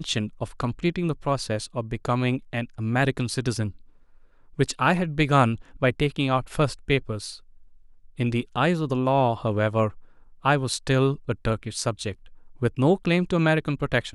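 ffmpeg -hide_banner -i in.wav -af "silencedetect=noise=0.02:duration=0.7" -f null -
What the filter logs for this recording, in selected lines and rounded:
silence_start: 3.71
silence_end: 4.59 | silence_duration: 0.88
silence_start: 7.36
silence_end: 8.19 | silence_duration: 0.83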